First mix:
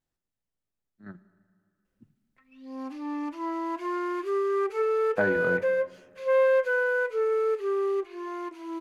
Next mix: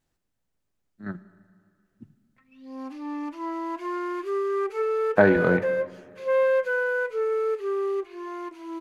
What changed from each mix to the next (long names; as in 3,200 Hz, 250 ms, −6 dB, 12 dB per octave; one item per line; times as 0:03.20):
speech +9.5 dB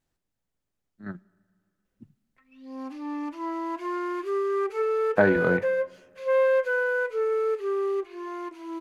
speech: send −11.5 dB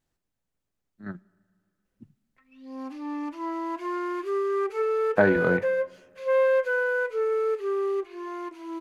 nothing changed